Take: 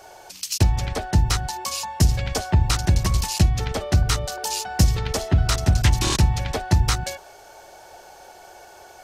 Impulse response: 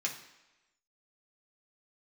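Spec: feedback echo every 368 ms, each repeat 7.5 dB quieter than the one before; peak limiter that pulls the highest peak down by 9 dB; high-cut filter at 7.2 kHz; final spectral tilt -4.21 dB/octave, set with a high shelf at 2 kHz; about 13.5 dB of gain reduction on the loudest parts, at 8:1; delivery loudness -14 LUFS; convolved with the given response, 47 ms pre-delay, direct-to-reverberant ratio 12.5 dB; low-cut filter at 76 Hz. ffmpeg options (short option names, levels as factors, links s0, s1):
-filter_complex "[0:a]highpass=76,lowpass=7200,highshelf=f=2000:g=-3,acompressor=threshold=0.0398:ratio=8,alimiter=level_in=1.26:limit=0.0631:level=0:latency=1,volume=0.794,aecho=1:1:368|736|1104|1472|1840:0.422|0.177|0.0744|0.0312|0.0131,asplit=2[s0][s1];[1:a]atrim=start_sample=2205,adelay=47[s2];[s1][s2]afir=irnorm=-1:irlink=0,volume=0.15[s3];[s0][s3]amix=inputs=2:normalize=0,volume=11.9"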